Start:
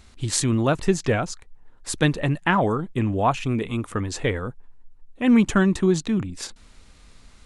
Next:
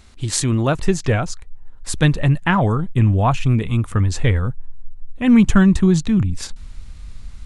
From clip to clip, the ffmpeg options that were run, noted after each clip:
-af "asubboost=boost=5.5:cutoff=150,volume=1.33"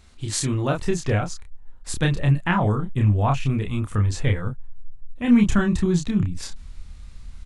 -filter_complex "[0:a]asplit=2[s0][s1];[s1]adelay=29,volume=0.668[s2];[s0][s2]amix=inputs=2:normalize=0,volume=0.501"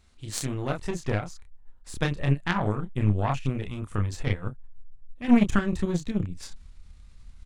-af "aeval=exprs='0.447*(cos(1*acos(clip(val(0)/0.447,-1,1)))-cos(1*PI/2))+0.0891*(cos(3*acos(clip(val(0)/0.447,-1,1)))-cos(3*PI/2))+0.0282*(cos(4*acos(clip(val(0)/0.447,-1,1)))-cos(4*PI/2))+0.00562*(cos(8*acos(clip(val(0)/0.447,-1,1)))-cos(8*PI/2))':c=same,volume=0.891"

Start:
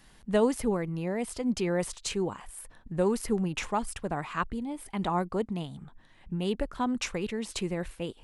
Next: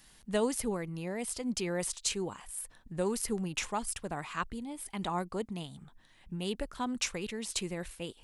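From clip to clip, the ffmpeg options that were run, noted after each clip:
-af "highshelf=f=2900:g=11,volume=0.501"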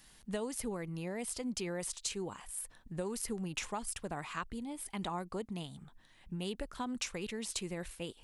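-af "acompressor=threshold=0.0224:ratio=6,volume=0.891"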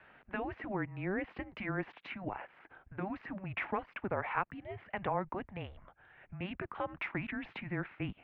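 -af "asubboost=boost=6:cutoff=180,afftfilt=real='re*lt(hypot(re,im),0.0891)':imag='im*lt(hypot(re,im),0.0891)':win_size=1024:overlap=0.75,highpass=f=320:t=q:w=0.5412,highpass=f=320:t=q:w=1.307,lowpass=f=2500:t=q:w=0.5176,lowpass=f=2500:t=q:w=0.7071,lowpass=f=2500:t=q:w=1.932,afreqshift=-190,volume=2.66"

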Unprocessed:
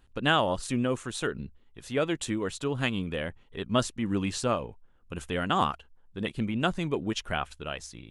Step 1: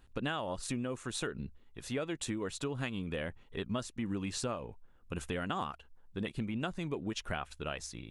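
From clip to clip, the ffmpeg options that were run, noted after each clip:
-af "bandreject=f=3100:w=21,acompressor=threshold=0.0224:ratio=6"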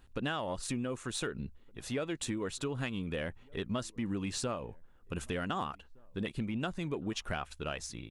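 -filter_complex "[0:a]asplit=2[s0][s1];[s1]asoftclip=type=tanh:threshold=0.0355,volume=0.668[s2];[s0][s2]amix=inputs=2:normalize=0,asplit=2[s3][s4];[s4]adelay=1516,volume=0.0398,highshelf=f=4000:g=-34.1[s5];[s3][s5]amix=inputs=2:normalize=0,volume=0.708"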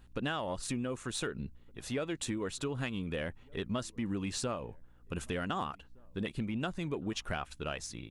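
-af "aeval=exprs='val(0)+0.000708*(sin(2*PI*60*n/s)+sin(2*PI*2*60*n/s)/2+sin(2*PI*3*60*n/s)/3+sin(2*PI*4*60*n/s)/4+sin(2*PI*5*60*n/s)/5)':c=same"

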